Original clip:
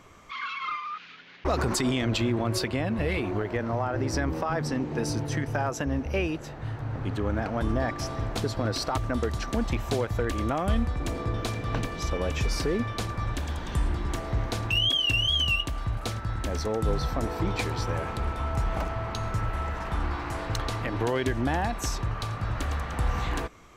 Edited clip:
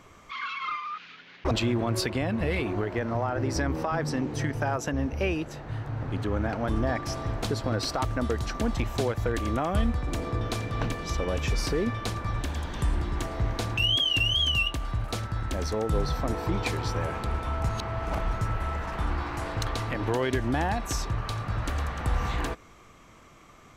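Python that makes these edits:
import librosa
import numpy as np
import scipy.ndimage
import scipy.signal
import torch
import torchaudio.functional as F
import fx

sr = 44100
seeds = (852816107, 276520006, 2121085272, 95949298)

y = fx.edit(x, sr, fx.cut(start_s=1.51, length_s=0.58),
    fx.cut(start_s=4.92, length_s=0.35),
    fx.reverse_span(start_s=18.62, length_s=0.64), tone=tone)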